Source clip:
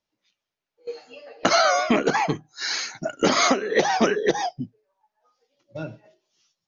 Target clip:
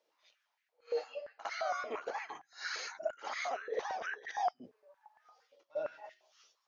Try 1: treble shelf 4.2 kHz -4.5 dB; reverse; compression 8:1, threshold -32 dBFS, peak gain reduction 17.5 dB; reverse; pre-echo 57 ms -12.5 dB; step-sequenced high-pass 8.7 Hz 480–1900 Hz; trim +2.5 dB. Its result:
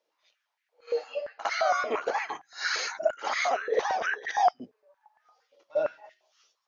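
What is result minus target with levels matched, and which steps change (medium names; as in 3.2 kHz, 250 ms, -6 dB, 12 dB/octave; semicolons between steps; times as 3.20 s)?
compression: peak gain reduction -10.5 dB
change: compression 8:1, threshold -44 dBFS, peak gain reduction 28 dB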